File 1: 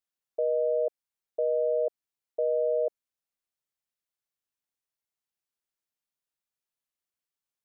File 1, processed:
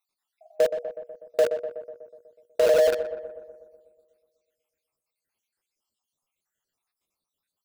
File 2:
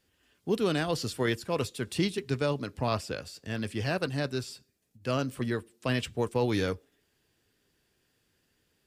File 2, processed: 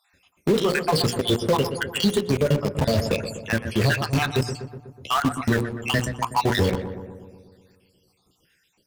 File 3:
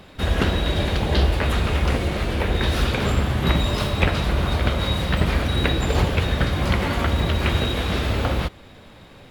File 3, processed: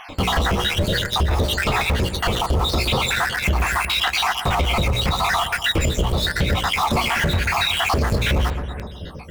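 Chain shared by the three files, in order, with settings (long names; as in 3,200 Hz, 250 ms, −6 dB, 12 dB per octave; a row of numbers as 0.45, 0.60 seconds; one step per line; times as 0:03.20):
time-frequency cells dropped at random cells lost 70%
dynamic equaliser 300 Hz, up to −5 dB, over −45 dBFS, Q 2.9
mains-hum notches 60/120/180/240/300/360/420/480/540/600 Hz
flanger 0.91 Hz, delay 9.2 ms, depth 5.9 ms, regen −32%
in parallel at −11.5 dB: log-companded quantiser 2 bits
on the sum: downward compressor 6 to 1, threshold −29 dBFS
wave folding −24 dBFS
high-shelf EQ 7,700 Hz −3.5 dB
feedback echo with a low-pass in the loop 123 ms, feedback 65%, low-pass 1,700 Hz, level −11.5 dB
brickwall limiter −29 dBFS
normalise the peak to −12 dBFS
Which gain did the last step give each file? +17.0, +17.0, +17.0 decibels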